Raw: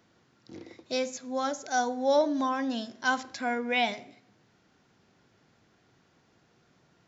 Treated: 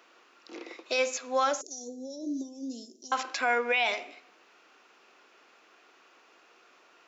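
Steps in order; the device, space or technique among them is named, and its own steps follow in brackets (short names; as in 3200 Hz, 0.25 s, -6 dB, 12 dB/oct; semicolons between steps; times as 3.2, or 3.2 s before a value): laptop speaker (HPF 350 Hz 24 dB/oct; bell 1200 Hz +7.5 dB 0.53 oct; bell 2600 Hz +10 dB 0.38 oct; limiter -22 dBFS, peak gain reduction 11 dB); 1.61–3.12 Chebyshev band-stop 350–6100 Hz, order 3; gain +5 dB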